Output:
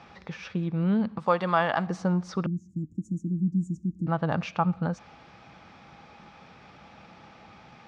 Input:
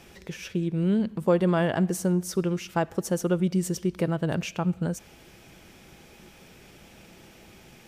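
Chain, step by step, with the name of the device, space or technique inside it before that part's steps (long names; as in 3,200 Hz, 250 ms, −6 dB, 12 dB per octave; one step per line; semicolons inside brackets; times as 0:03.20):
0:01.18–0:01.87: spectral tilt +3 dB per octave
0:02.46–0:04.07: Chebyshev band-stop filter 320–6,900 Hz, order 5
guitar cabinet (loudspeaker in its box 76–4,600 Hz, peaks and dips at 370 Hz −9 dB, 820 Hz +8 dB, 1,200 Hz +10 dB, 3,000 Hz −5 dB)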